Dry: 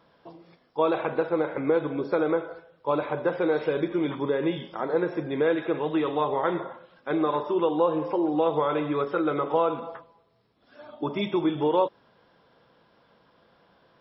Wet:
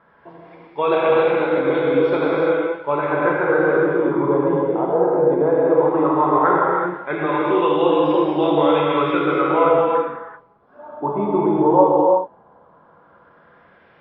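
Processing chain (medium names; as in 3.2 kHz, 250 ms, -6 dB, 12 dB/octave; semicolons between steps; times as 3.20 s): LFO low-pass sine 0.15 Hz 810–3300 Hz; gated-style reverb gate 410 ms flat, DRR -4.5 dB; trim +1.5 dB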